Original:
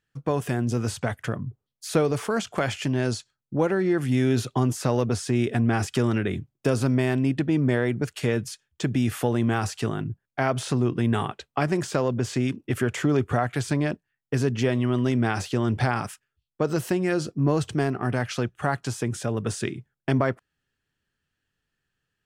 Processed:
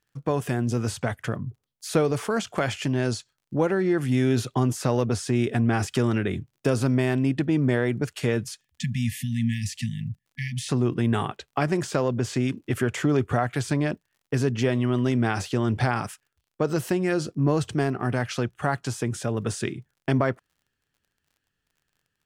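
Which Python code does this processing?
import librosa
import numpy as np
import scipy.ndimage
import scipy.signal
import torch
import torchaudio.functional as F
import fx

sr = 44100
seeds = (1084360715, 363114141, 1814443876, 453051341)

y = fx.spec_erase(x, sr, start_s=8.61, length_s=2.08, low_hz=240.0, high_hz=1700.0)
y = fx.dmg_crackle(y, sr, seeds[0], per_s=46.0, level_db=-53.0)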